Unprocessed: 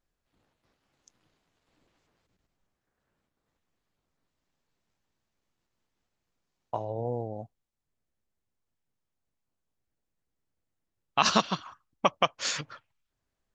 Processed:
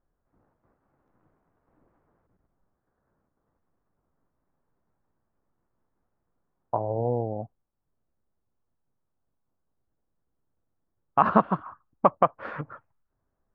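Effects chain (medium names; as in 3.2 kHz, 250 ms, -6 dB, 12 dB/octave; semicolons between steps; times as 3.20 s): low-pass 1.4 kHz 24 dB/octave; trim +5.5 dB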